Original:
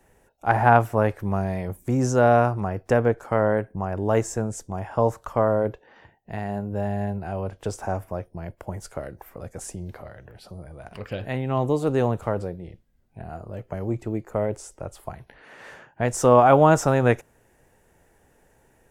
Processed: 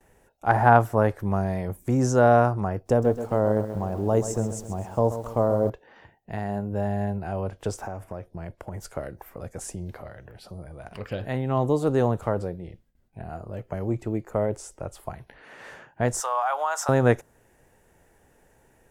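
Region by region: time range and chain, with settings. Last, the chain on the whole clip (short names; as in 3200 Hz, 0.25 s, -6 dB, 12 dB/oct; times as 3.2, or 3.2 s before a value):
2.79–5.7 bell 1800 Hz -11 dB 1.4 oct + lo-fi delay 0.131 s, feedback 55%, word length 8-bit, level -11 dB
7.77–8.85 compressor 5:1, threshold -29 dBFS + decimation joined by straight lines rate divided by 2×
16.2–16.89 HPF 810 Hz 24 dB/oct + compressor 2:1, threshold -24 dBFS
whole clip: gate with hold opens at -57 dBFS; dynamic EQ 2500 Hz, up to -6 dB, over -47 dBFS, Q 2.4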